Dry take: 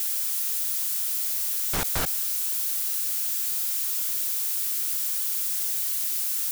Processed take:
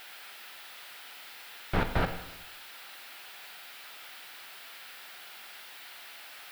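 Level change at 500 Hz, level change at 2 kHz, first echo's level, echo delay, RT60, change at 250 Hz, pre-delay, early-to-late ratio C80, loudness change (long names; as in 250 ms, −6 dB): +3.0 dB, 0.0 dB, no echo audible, no echo audible, 0.85 s, +4.0 dB, 9 ms, 12.0 dB, −16.0 dB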